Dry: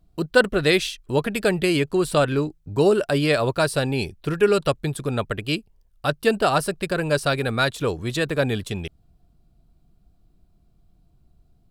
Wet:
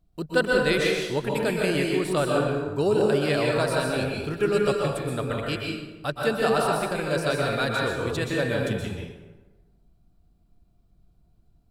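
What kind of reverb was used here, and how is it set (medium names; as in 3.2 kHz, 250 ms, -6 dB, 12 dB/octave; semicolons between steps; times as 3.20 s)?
plate-style reverb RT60 1.2 s, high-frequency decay 0.6×, pre-delay 110 ms, DRR -2 dB; trim -6.5 dB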